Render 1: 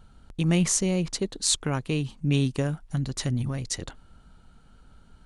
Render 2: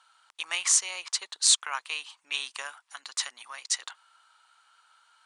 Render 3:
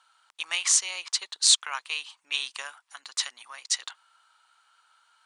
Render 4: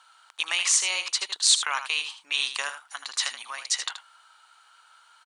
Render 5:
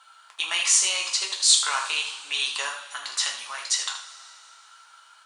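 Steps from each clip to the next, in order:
elliptic band-pass 1000–9400 Hz, stop band 70 dB; gain +4 dB
dynamic EQ 3800 Hz, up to +5 dB, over -40 dBFS, Q 0.81; gain -1.5 dB
in parallel at -2 dB: negative-ratio compressor -33 dBFS, ratio -1; on the sum: echo 78 ms -10 dB; gain -1 dB
dynamic EQ 2100 Hz, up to -4 dB, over -37 dBFS, Q 1.2; two-slope reverb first 0.38 s, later 2.9 s, from -19 dB, DRR -0.5 dB

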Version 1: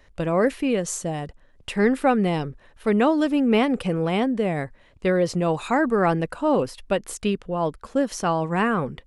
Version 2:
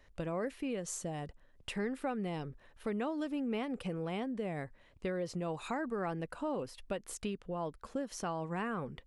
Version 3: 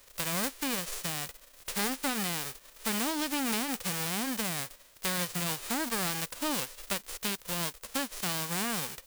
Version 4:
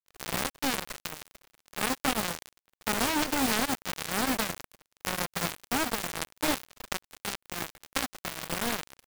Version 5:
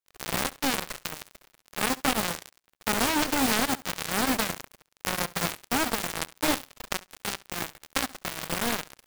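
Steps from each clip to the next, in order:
compressor 2.5:1, threshold -29 dBFS, peak gain reduction 10 dB; gain -8 dB
spectral whitening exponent 0.1; gain +4.5 dB
switching dead time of 0.3 ms; gain +8.5 dB
flutter echo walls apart 11.7 m, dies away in 0.21 s; gain +2.5 dB

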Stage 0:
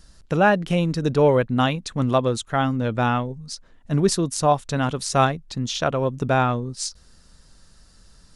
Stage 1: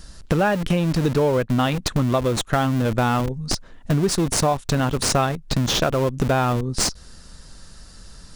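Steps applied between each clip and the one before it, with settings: in parallel at -6 dB: Schmitt trigger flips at -26 dBFS; on the sum: compressor 5:1, threshold -27 dBFS, peak gain reduction 14 dB; gain +9 dB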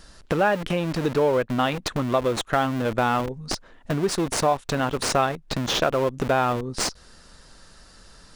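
tone controls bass -9 dB, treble -6 dB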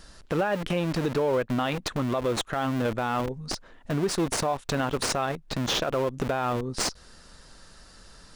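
limiter -16 dBFS, peak gain reduction 8.5 dB; gain -1 dB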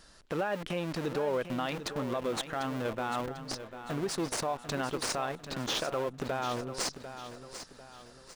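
low shelf 160 Hz -7 dB; on a send: feedback echo 0.746 s, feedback 40%, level -11 dB; on the sum: gain -5.5 dB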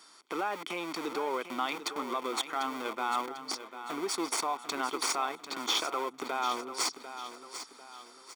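HPF 320 Hz 24 dB/oct; comb 0.9 ms, depth 68%; gain +1.5 dB

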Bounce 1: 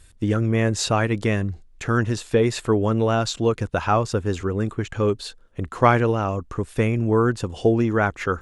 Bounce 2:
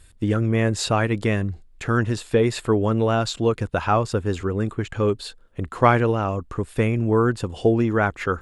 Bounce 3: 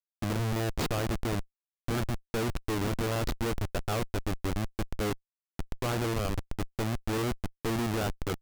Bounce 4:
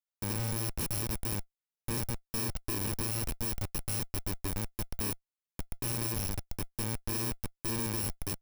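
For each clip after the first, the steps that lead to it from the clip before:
bell 6000 Hz -6 dB 0.28 oct
Schmitt trigger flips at -21 dBFS; gain -7 dB
FFT order left unsorted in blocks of 64 samples; gain -3.5 dB

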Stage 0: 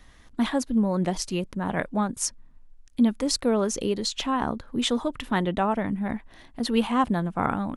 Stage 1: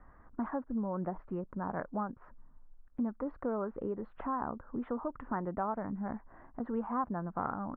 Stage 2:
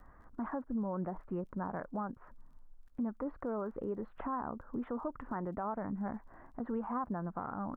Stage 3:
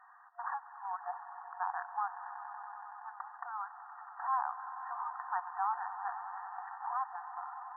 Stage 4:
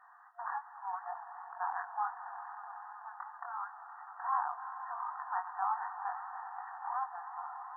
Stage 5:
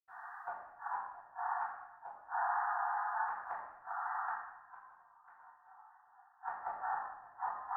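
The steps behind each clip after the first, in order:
steep low-pass 1400 Hz 36 dB/oct; tilt shelf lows -5 dB, about 850 Hz; compressor 2:1, threshold -38 dBFS, peak gain reduction 11 dB
limiter -28.5 dBFS, peak gain reduction 8.5 dB; crackle 19/s -61 dBFS
ending faded out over 1.17 s; swelling echo 94 ms, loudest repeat 5, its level -15 dB; FFT band-pass 710–1900 Hz; gain +6 dB
chorus 2.7 Hz, delay 20 ms, depth 5.3 ms; gain +3 dB
flipped gate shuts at -34 dBFS, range -36 dB; reverb RT60 1.0 s, pre-delay 77 ms; gain +10.5 dB

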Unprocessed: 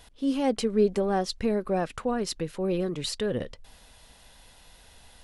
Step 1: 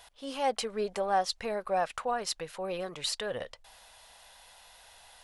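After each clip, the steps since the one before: resonant low shelf 470 Hz -13 dB, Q 1.5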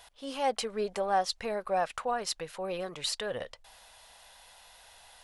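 nothing audible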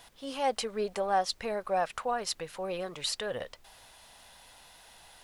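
added noise pink -66 dBFS

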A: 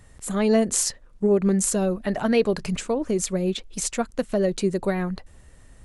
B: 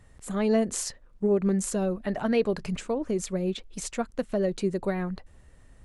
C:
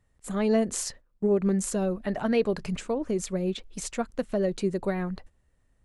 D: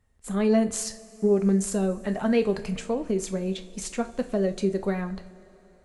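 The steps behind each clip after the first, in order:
high shelf 4500 Hz -6.5 dB; gain -4 dB
gate -45 dBFS, range -14 dB
two-slope reverb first 0.34 s, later 4.4 s, from -22 dB, DRR 7 dB

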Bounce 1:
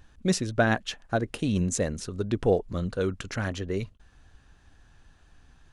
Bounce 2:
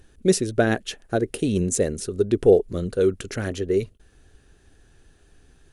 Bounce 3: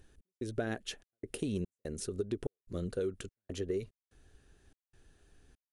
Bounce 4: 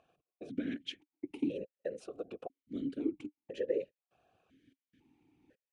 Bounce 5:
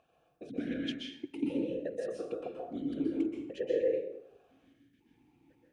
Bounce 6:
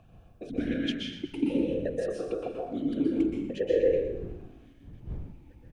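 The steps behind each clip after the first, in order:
de-esser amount 40%; fifteen-band EQ 400 Hz +11 dB, 1000 Hz -7 dB, 10000 Hz +11 dB; gain +1 dB
compressor 6:1, threshold -23 dBFS, peak gain reduction 13 dB; step gate "x.xxx.xx.xx" 73 bpm -60 dB; gain -8 dB
whisperiser; vowel sequencer 2 Hz; gain +10.5 dB
plate-style reverb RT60 0.81 s, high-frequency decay 0.6×, pre-delay 0.115 s, DRR -2 dB
wind noise 110 Hz -51 dBFS; frequency-shifting echo 0.12 s, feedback 52%, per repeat -39 Hz, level -11.5 dB; gain +5.5 dB

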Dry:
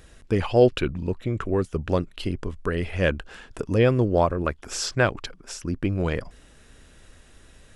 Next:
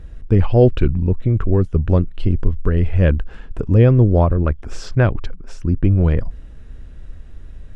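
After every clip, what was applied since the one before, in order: RIAA curve playback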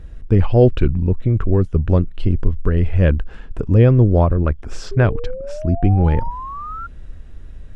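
painted sound rise, 4.91–6.87, 390–1400 Hz -30 dBFS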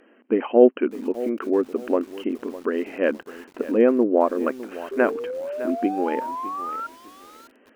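brick-wall FIR band-pass 220–3200 Hz; treble ducked by the level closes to 2200 Hz, closed at -14.5 dBFS; lo-fi delay 0.607 s, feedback 35%, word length 6-bit, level -15 dB

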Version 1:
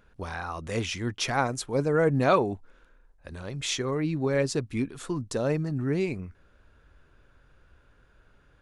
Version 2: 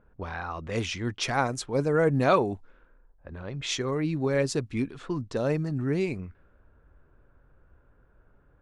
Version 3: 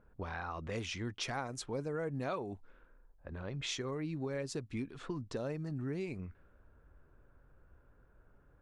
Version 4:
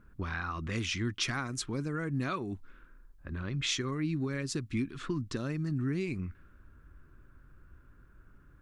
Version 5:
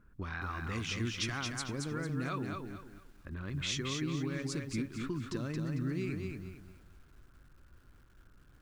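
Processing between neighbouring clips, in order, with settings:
low-pass opened by the level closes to 1100 Hz, open at -24 dBFS
compressor 4:1, threshold -33 dBFS, peak gain reduction 14 dB; gain -3.5 dB
band shelf 630 Hz -11.5 dB 1.3 oct; gain +7 dB
lo-fi delay 0.225 s, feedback 35%, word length 10-bit, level -4 dB; gain -4 dB

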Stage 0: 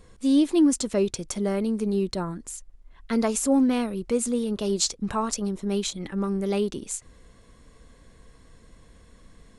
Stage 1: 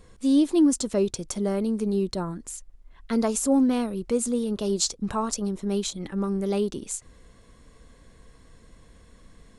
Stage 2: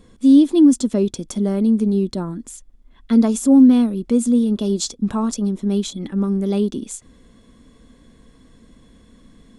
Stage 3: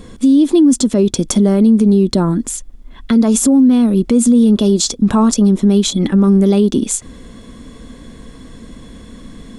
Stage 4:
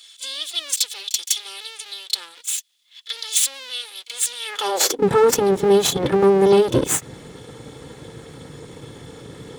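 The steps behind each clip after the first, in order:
dynamic EQ 2200 Hz, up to -5 dB, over -46 dBFS, Q 1.3
small resonant body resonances 240/3400 Hz, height 12 dB, ringing for 30 ms
in parallel at +2.5 dB: compressor, threshold -23 dBFS, peak gain reduction 15 dB; on the sum: limiter -11 dBFS, peak gain reduction 9 dB; gain +6.5 dB
minimum comb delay 2.3 ms; pre-echo 33 ms -15 dB; high-pass sweep 3500 Hz -> 130 Hz, 4.38–5.14

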